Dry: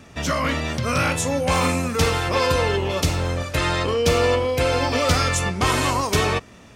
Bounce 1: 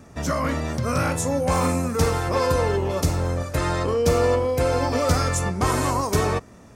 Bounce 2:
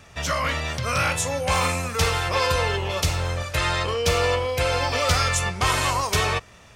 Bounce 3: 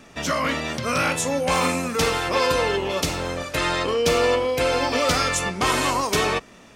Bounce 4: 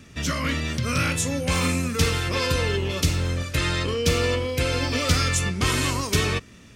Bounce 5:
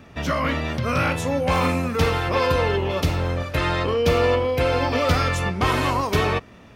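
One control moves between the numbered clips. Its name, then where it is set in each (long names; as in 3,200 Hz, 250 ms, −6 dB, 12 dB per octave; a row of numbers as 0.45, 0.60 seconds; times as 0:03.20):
parametric band, centre frequency: 3,000, 260, 86, 770, 7,800 Hertz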